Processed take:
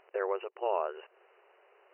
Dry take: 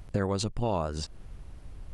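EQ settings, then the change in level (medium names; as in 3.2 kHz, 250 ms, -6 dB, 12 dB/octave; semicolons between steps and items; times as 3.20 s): brick-wall FIR band-pass 360–3000 Hz; 0.0 dB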